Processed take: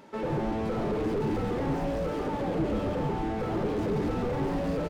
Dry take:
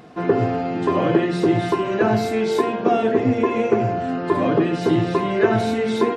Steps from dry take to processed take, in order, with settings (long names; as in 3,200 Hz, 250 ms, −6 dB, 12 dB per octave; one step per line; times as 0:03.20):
speed change +26%
echo with shifted repeats 139 ms, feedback 54%, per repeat −110 Hz, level −4.5 dB
slew-rate limiting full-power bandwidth 48 Hz
level −8 dB